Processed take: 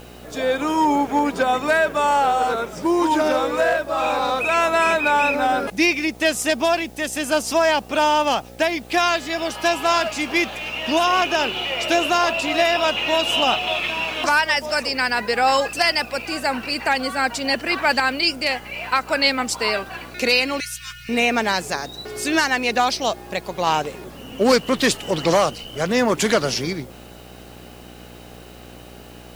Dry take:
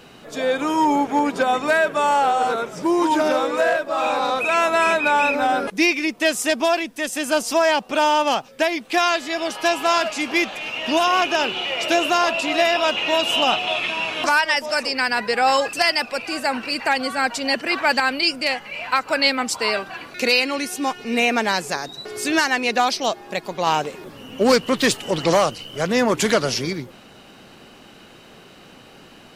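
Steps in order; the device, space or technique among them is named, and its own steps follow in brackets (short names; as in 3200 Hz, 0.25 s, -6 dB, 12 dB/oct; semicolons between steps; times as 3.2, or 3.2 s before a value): video cassette with head-switching buzz (buzz 60 Hz, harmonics 14, -43 dBFS -3 dB/oct; white noise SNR 32 dB); 20.6–21.09 Chebyshev band-stop 150–1400 Hz, order 4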